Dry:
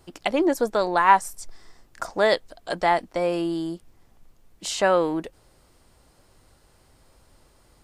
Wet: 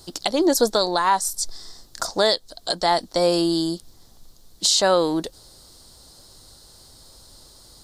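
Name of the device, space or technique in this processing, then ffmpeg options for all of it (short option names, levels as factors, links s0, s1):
over-bright horn tweeter: -af "highshelf=f=3200:t=q:w=3:g=8.5,alimiter=limit=0.237:level=0:latency=1:release=370,volume=1.78"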